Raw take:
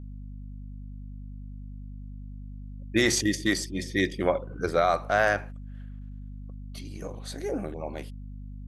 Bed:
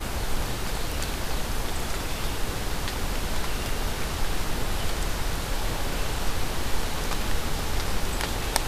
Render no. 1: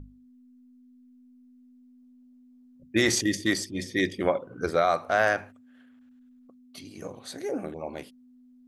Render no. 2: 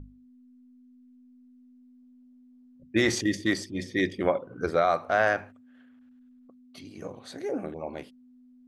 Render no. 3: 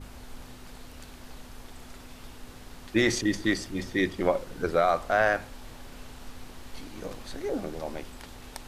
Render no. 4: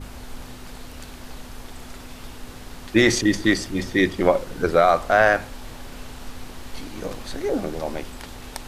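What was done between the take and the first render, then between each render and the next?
notches 50/100/150/200 Hz
LPF 3500 Hz 6 dB/oct
add bed -17 dB
gain +7 dB

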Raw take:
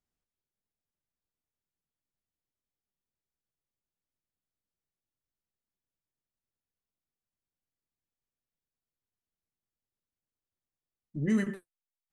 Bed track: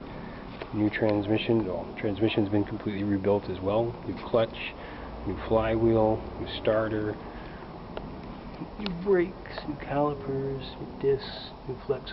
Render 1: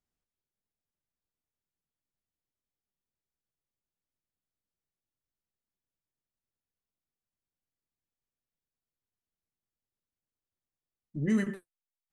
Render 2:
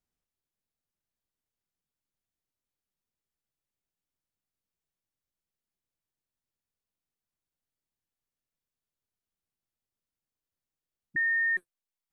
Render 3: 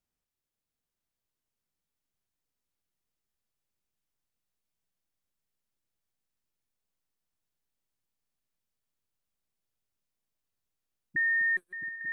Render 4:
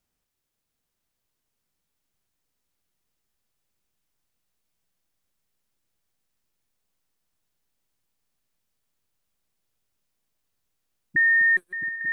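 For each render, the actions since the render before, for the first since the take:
nothing audible
11.16–11.57 bleep 1830 Hz -23.5 dBFS
regenerating reverse delay 0.364 s, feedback 57%, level -12 dB; swung echo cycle 0.896 s, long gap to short 3:1, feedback 62%, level -8.5 dB
gain +8 dB

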